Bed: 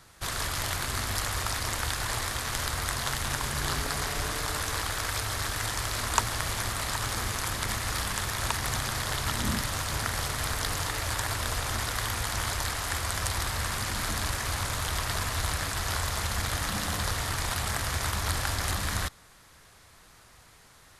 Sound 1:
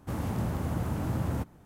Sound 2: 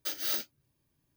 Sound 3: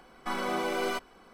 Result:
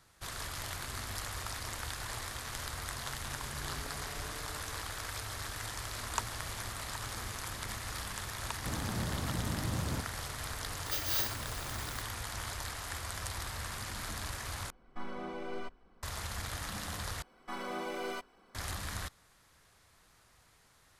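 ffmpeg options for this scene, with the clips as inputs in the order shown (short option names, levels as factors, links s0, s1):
-filter_complex "[3:a]asplit=2[s0][s1];[0:a]volume=0.335[s2];[2:a]aeval=exprs='val(0)+0.5*0.0119*sgn(val(0))':c=same[s3];[s0]aemphasis=mode=reproduction:type=bsi[s4];[s2]asplit=3[s5][s6][s7];[s5]atrim=end=14.704[s8];[s4]atrim=end=1.33,asetpts=PTS-STARTPTS,volume=0.237[s9];[s6]atrim=start=16.026:end=17.224[s10];[s1]atrim=end=1.33,asetpts=PTS-STARTPTS,volume=0.398[s11];[s7]atrim=start=18.546[s12];[1:a]atrim=end=1.65,asetpts=PTS-STARTPTS,volume=0.501,afade=t=in:d=0.004:c=hsin,afade=t=out:st=1.646:d=0.004:c=hsin,adelay=378378S[s13];[s3]atrim=end=1.16,asetpts=PTS-STARTPTS,volume=0.75,afade=t=in:d=0.004:c=hsin,afade=t=out:st=1.156:d=0.004:c=hsin,adelay=10860[s14];[s8][s9]acrossfade=d=0.004:c1=hsin:c2=hsin[s15];[s15][s10]acrossfade=d=0.004:c1=hsin:c2=hsin[s16];[s16][s11]acrossfade=d=0.004:c1=hsin:c2=hsin[s17];[s17][s12]acrossfade=d=0.004:c1=hsin:c2=hsin[s18];[s18][s13][s14]amix=inputs=3:normalize=0"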